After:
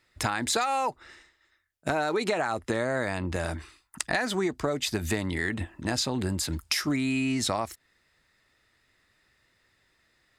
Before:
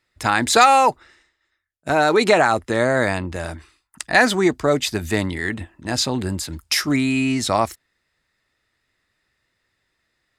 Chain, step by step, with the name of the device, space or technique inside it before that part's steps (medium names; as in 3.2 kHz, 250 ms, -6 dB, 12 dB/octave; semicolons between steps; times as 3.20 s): serial compression, peaks first (compression 6:1, threshold -23 dBFS, peak gain reduction 14.5 dB; compression 1.5:1, threshold -36 dBFS, peak gain reduction 6 dB); trim +3.5 dB